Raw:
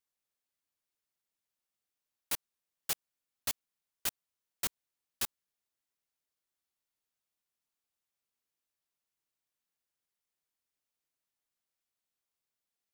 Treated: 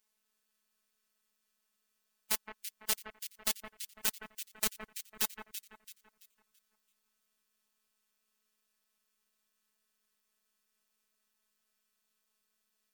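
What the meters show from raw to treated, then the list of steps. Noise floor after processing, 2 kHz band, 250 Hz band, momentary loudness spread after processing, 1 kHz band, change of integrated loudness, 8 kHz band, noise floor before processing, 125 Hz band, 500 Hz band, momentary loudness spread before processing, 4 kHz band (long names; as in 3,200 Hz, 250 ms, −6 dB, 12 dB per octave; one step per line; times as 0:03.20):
−81 dBFS, +3.5 dB, +4.5 dB, 11 LU, +2.5 dB, +1.5 dB, +2.5 dB, below −85 dBFS, −3.0 dB, +4.0 dB, 1 LU, +2.5 dB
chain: gate on every frequency bin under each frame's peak −15 dB strong
phases set to zero 216 Hz
in parallel at +2.5 dB: compressor whose output falls as the input rises −39 dBFS, ratio −1
on the sum: delay that swaps between a low-pass and a high-pass 167 ms, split 2,200 Hz, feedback 59%, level −6.5 dB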